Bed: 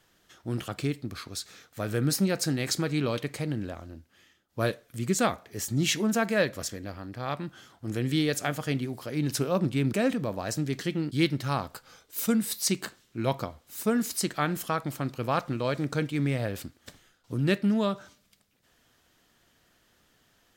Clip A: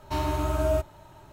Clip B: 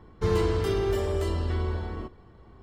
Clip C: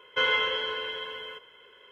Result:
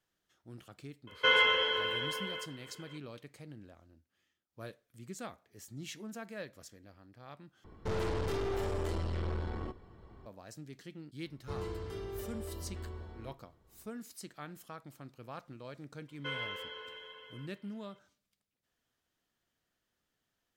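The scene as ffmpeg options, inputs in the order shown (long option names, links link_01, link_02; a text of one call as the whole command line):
ffmpeg -i bed.wav -i cue0.wav -i cue1.wav -i cue2.wav -filter_complex "[3:a]asplit=2[link_01][link_02];[2:a]asplit=2[link_03][link_04];[0:a]volume=-18.5dB[link_05];[link_03]aeval=exprs='(tanh(35.5*val(0)+0.55)-tanh(0.55))/35.5':channel_layout=same[link_06];[link_05]asplit=2[link_07][link_08];[link_07]atrim=end=7.644[link_09];[link_06]atrim=end=2.62,asetpts=PTS-STARTPTS,volume=-1dB[link_10];[link_08]atrim=start=10.256[link_11];[link_01]atrim=end=1.91,asetpts=PTS-STARTPTS,volume=-0.5dB,afade=type=in:duration=0.004:curve=hsin,afade=type=out:start_time=1.906:duration=0.004:curve=hsin,adelay=1070[link_12];[link_04]atrim=end=2.62,asetpts=PTS-STARTPTS,volume=-15.5dB,afade=type=in:duration=0.004:curve=hsin,afade=type=out:start_time=2.616:duration=0.004:curve=hsin,adelay=11260[link_13];[link_02]atrim=end=1.91,asetpts=PTS-STARTPTS,volume=-14.5dB,afade=type=in:duration=0.004:curve=hsin,afade=type=out:start_time=1.906:duration=0.004:curve=hsin,adelay=16080[link_14];[link_09][link_10]acrossfade=duration=0.004:curve1=hsin:curve2=hsin[link_15];[link_15][link_11]acrossfade=duration=0.004:curve1=hsin:curve2=hsin[link_16];[link_16][link_12][link_13][link_14]amix=inputs=4:normalize=0" out.wav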